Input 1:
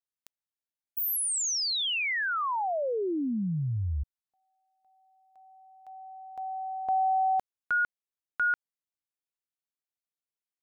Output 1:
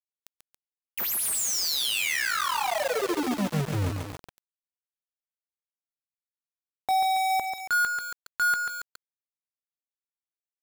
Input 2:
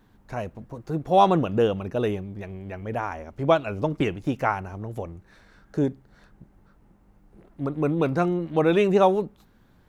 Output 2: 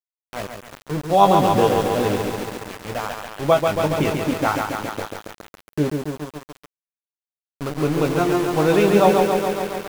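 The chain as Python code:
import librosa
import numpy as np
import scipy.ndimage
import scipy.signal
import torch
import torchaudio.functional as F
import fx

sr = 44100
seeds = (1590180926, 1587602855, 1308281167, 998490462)

y = fx.doubler(x, sr, ms=20.0, db=-7.0)
y = np.where(np.abs(y) >= 10.0 ** (-27.5 / 20.0), y, 0.0)
y = fx.echo_crushed(y, sr, ms=139, feedback_pct=80, bits=6, wet_db=-4)
y = y * librosa.db_to_amplitude(1.5)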